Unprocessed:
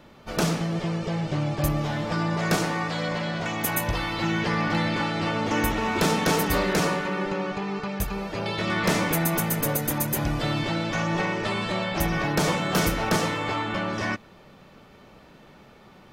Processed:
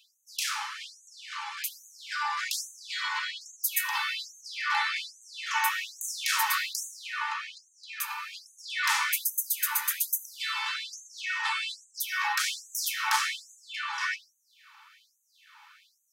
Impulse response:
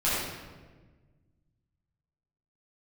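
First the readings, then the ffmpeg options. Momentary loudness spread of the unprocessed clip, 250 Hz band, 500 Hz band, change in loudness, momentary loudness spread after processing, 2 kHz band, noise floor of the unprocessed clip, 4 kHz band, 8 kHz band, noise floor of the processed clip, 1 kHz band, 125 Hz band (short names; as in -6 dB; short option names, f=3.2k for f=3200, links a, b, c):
6 LU, under -40 dB, under -40 dB, -4.5 dB, 12 LU, -1.5 dB, -51 dBFS, -0.5 dB, +0.5 dB, -70 dBFS, -5.0 dB, under -40 dB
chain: -filter_complex "[0:a]asplit=2[a][b];[b]highshelf=f=4.7k:g=-8.5[c];[1:a]atrim=start_sample=2205[d];[c][d]afir=irnorm=-1:irlink=0,volume=-15dB[e];[a][e]amix=inputs=2:normalize=0,afftfilt=real='re*gte(b*sr/1024,780*pow(6100/780,0.5+0.5*sin(2*PI*1.2*pts/sr)))':imag='im*gte(b*sr/1024,780*pow(6100/780,0.5+0.5*sin(2*PI*1.2*pts/sr)))':win_size=1024:overlap=0.75"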